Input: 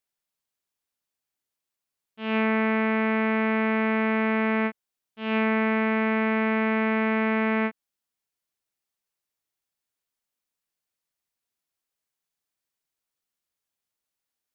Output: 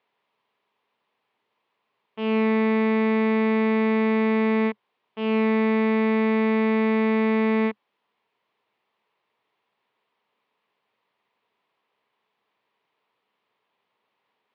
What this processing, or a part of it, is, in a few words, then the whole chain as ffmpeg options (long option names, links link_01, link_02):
overdrive pedal into a guitar cabinet: -filter_complex "[0:a]asplit=2[link_01][link_02];[link_02]highpass=frequency=720:poles=1,volume=32dB,asoftclip=type=tanh:threshold=-13dB[link_03];[link_01][link_03]amix=inputs=2:normalize=0,lowpass=frequency=1900:poles=1,volume=-6dB,highpass=100,equalizer=frequency=120:width_type=q:width=4:gain=9,equalizer=frequency=210:width_type=q:width=4:gain=7,equalizer=frequency=430:width_type=q:width=4:gain=8,equalizer=frequency=990:width_type=q:width=4:gain=7,equalizer=frequency=1500:width_type=q:width=4:gain=-6,lowpass=frequency=3500:width=0.5412,lowpass=frequency=3500:width=1.3066,volume=-5.5dB"